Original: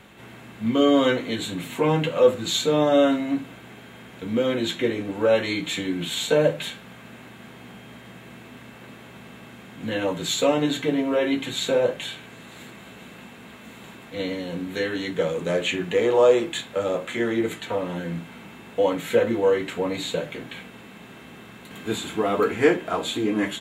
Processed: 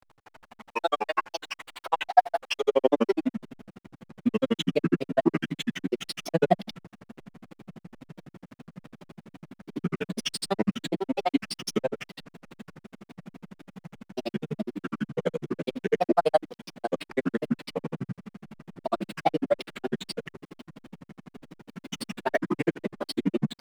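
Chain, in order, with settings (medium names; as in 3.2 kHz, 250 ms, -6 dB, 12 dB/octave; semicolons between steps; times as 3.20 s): granulator 44 ms, grains 12 per s, pitch spread up and down by 7 st; high-pass sweep 850 Hz -> 180 Hz, 2.44–3.28 s; hysteresis with a dead band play -42 dBFS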